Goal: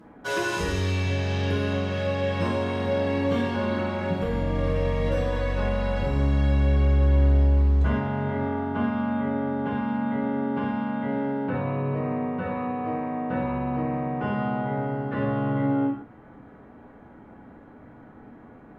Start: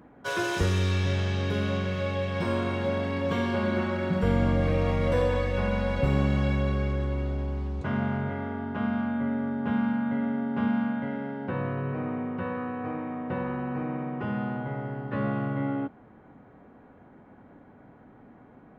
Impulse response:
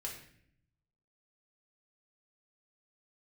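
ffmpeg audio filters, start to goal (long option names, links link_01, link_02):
-filter_complex "[0:a]alimiter=limit=-20.5dB:level=0:latency=1:release=358[link_01];[1:a]atrim=start_sample=2205,afade=type=out:start_time=0.16:duration=0.01,atrim=end_sample=7497,asetrate=28665,aresample=44100[link_02];[link_01][link_02]afir=irnorm=-1:irlink=0,volume=3dB"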